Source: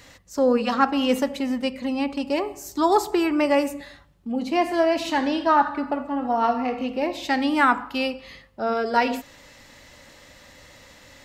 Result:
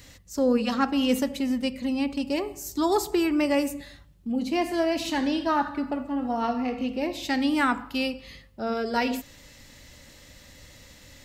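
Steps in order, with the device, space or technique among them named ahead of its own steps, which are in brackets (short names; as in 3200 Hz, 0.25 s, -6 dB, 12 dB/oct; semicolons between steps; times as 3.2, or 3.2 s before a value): smiley-face EQ (low shelf 130 Hz +5.5 dB; bell 960 Hz -7.5 dB 2.3 oct; high shelf 10000 Hz +5 dB); 6.44–6.98 high shelf 12000 Hz -5 dB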